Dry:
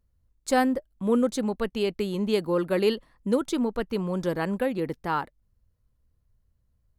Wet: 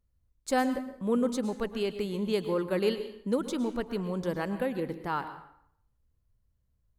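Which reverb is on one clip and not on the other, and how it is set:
dense smooth reverb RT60 0.68 s, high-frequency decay 0.8×, pre-delay 95 ms, DRR 10.5 dB
level −4.5 dB

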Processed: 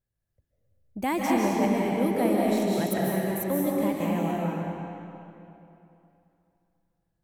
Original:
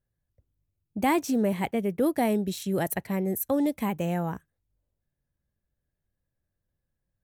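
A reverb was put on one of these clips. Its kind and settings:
comb and all-pass reverb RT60 2.9 s, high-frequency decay 0.8×, pre-delay 110 ms, DRR −4.5 dB
level −4 dB

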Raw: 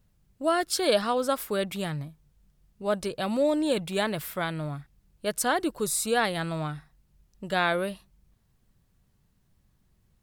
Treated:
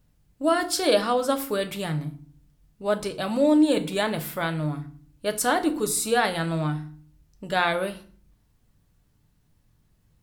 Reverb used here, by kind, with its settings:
feedback delay network reverb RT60 0.46 s, low-frequency decay 1.55×, high-frequency decay 0.8×, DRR 6 dB
level +1.5 dB

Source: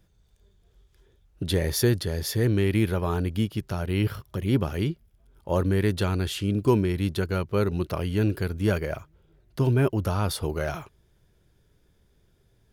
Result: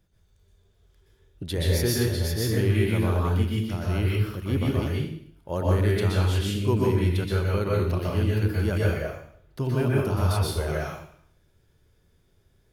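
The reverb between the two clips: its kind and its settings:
dense smooth reverb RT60 0.62 s, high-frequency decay 1×, pre-delay 110 ms, DRR −4.5 dB
level −5 dB

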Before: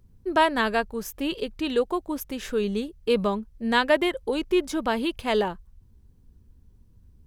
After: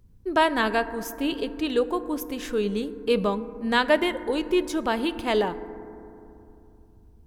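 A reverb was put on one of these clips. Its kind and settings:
feedback delay network reverb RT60 2.9 s, low-frequency decay 1.35×, high-frequency decay 0.25×, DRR 12.5 dB

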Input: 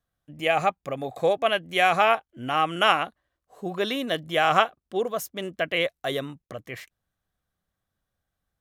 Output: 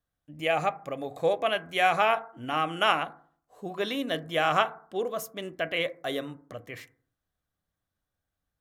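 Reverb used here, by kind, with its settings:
feedback delay network reverb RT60 0.5 s, low-frequency decay 1.25×, high-frequency decay 0.3×, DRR 11 dB
level −4 dB

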